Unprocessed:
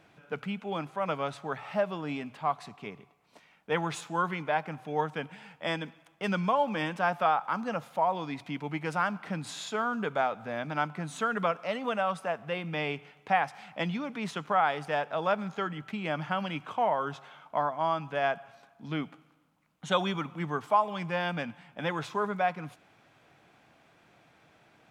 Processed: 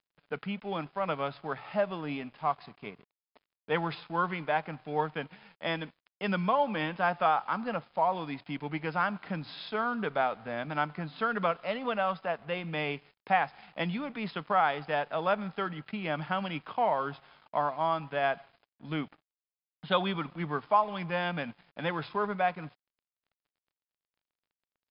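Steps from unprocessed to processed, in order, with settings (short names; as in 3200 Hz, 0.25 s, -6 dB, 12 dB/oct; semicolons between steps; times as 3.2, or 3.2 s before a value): crossover distortion -53 dBFS; brick-wall FIR low-pass 5200 Hz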